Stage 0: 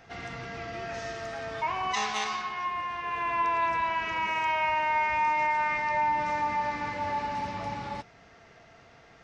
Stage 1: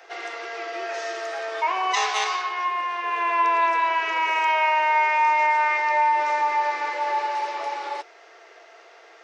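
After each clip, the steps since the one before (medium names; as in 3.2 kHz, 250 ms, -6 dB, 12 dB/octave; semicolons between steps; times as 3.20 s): steep high-pass 330 Hz 96 dB/octave; trim +6.5 dB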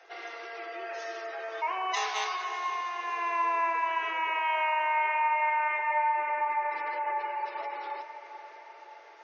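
spectral gate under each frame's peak -30 dB strong; echo that smears into a reverb 522 ms, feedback 57%, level -12 dB; trim -7.5 dB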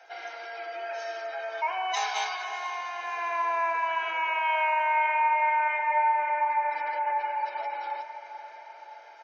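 comb 1.3 ms, depth 68%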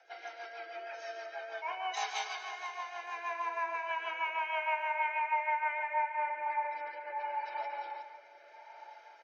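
rotary cabinet horn 6.3 Hz, later 0.75 Hz, at 5.82 s; on a send: multi-tap echo 141/238 ms -10.5/-18 dB; on the sum: trim -4.5 dB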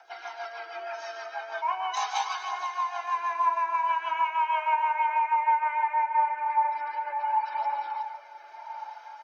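graphic EQ 250/500/1000/2000 Hz -4/-11/+11/-6 dB; in parallel at +2 dB: compression, threshold -36 dBFS, peak gain reduction 14 dB; on the sum: phaser 0.39 Hz, delay 4.1 ms, feedback 32%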